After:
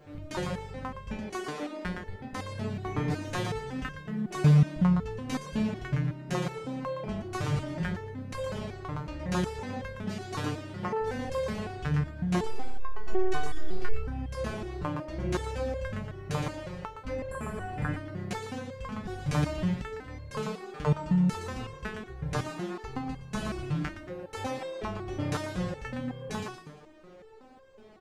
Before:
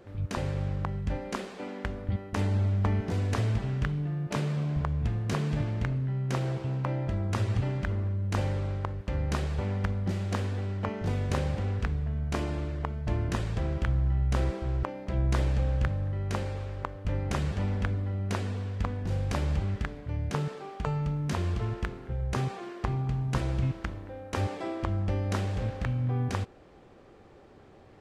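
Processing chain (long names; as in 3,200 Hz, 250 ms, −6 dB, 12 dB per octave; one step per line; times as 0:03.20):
0:12.43–0:13.93: phases set to zero 374 Hz
on a send: echo with shifted repeats 116 ms, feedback 37%, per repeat +33 Hz, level −6 dB
0:17.20–0:17.94: on the sum: healed spectral selection 1,900–7,100 Hz before
boost into a limiter +13.5 dB
step-sequenced resonator 5.4 Hz 150–530 Hz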